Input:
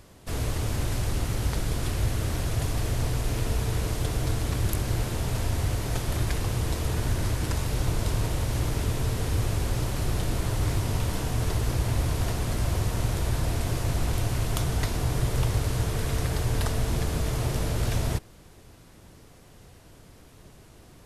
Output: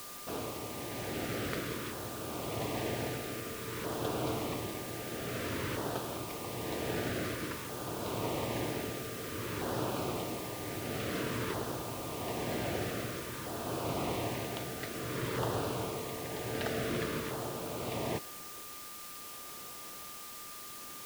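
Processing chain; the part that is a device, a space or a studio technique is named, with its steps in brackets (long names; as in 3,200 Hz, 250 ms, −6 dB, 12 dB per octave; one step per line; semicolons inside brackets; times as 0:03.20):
shortwave radio (band-pass filter 270–2,800 Hz; amplitude tremolo 0.71 Hz, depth 56%; auto-filter notch saw down 0.52 Hz 680–2,400 Hz; steady tone 1,200 Hz −54 dBFS; white noise bed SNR 9 dB)
level +2.5 dB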